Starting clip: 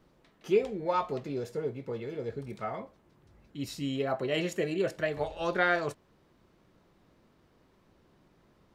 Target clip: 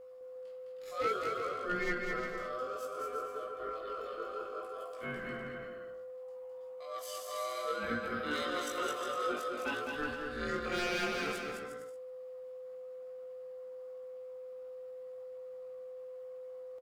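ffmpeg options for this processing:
-filter_complex "[0:a]highpass=f=46:w=0.5412,highpass=f=46:w=1.3066,bandreject=f=5000:w=5.6,acrossover=split=160[s0][s1];[s0]acompressor=threshold=0.00178:ratio=16[s2];[s2][s1]amix=inputs=2:normalize=0,crystalizer=i=1.5:c=0,atempo=0.52,aeval=exprs='0.0944*(abs(mod(val(0)/0.0944+3,4)-2)-1)':c=same,aeval=exprs='val(0)*sin(2*PI*890*n/s)':c=same,flanger=delay=16:depth=3.7:speed=0.6,aeval=exprs='val(0)+0.00447*sin(2*PI*510*n/s)':c=same,asplit=2[s3][s4];[s4]aecho=0:1:210|357|459.9|531.9|582.4:0.631|0.398|0.251|0.158|0.1[s5];[s3][s5]amix=inputs=2:normalize=0,volume=0.841"

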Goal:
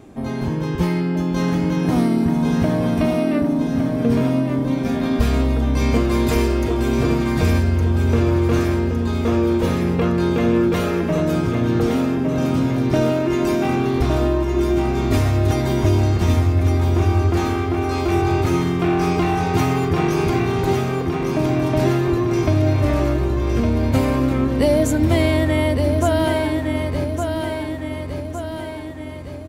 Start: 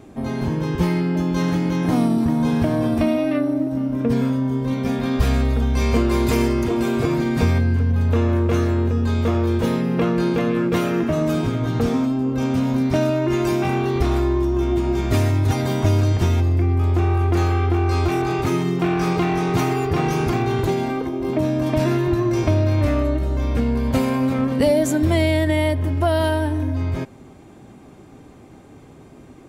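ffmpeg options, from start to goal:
-af "aecho=1:1:1161|2322|3483|4644|5805|6966|8127:0.531|0.292|0.161|0.0883|0.0486|0.0267|0.0147"

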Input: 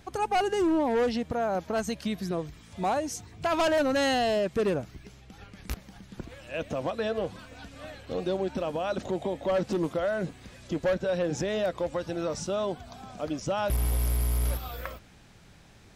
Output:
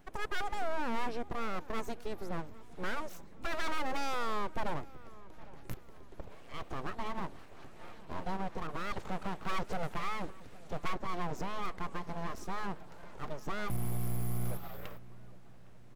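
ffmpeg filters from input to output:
-filter_complex "[0:a]equalizer=f=4700:w=0.47:g=-10.5,aeval=exprs='abs(val(0))':c=same,asplit=2[s0][s1];[s1]adelay=811,lowpass=f=1300:p=1,volume=0.112,asplit=2[s2][s3];[s3]adelay=811,lowpass=f=1300:p=1,volume=0.52,asplit=2[s4][s5];[s5]adelay=811,lowpass=f=1300:p=1,volume=0.52,asplit=2[s6][s7];[s7]adelay=811,lowpass=f=1300:p=1,volume=0.52[s8];[s0][s2][s4][s6][s8]amix=inputs=5:normalize=0,asettb=1/sr,asplit=3[s9][s10][s11];[s9]atrim=end=8.674[s12];[s10]atrim=start=8.67:end=10.88,asetpts=PTS-STARTPTS,afade=t=in:d=0.004:c=qsin,afade=t=out:st=2.206:d=0.004:c=qsin,adynamicequalizer=threshold=0.00891:dfrequency=1500:dqfactor=0.7:tfrequency=1500:tqfactor=0.7:attack=5:release=100:ratio=0.375:range=2:mode=boostabove:tftype=highshelf[s13];[s11]atrim=start=10.876[s14];[s12][s13]acrossfade=d=0.004:c1=hsin:c2=qsin[s15];[s15][s14]acrossfade=d=0.004:c1=qsin:c2=hsin,volume=0.631"

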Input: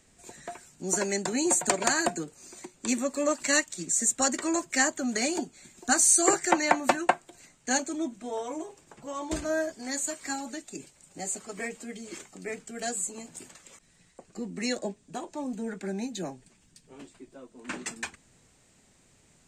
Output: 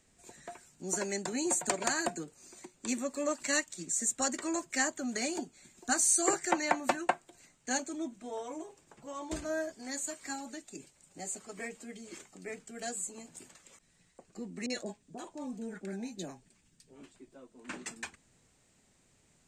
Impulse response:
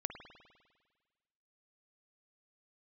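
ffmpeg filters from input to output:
-filter_complex "[0:a]asettb=1/sr,asplit=3[s0][s1][s2];[s0]atrim=end=14.664[s3];[s1]atrim=start=14.66:end=17.16,asetpts=PTS-STARTPTS,afade=t=in:d=0.004:c=qsin,afade=t=out:st=2.496:d=0.004:c=qsin,acrossover=split=780[s4][s5];[s5]adelay=40[s6];[s4][s6]amix=inputs=2:normalize=0,atrim=end_sample=110250[s7];[s2]atrim=start=17.156[s8];[s3][s7]acrossfade=d=0.004:c1=hsin:c2=qsin[s9];[s9][s8]acrossfade=d=0.004:c1=qsin:c2=hsin,volume=0.501"

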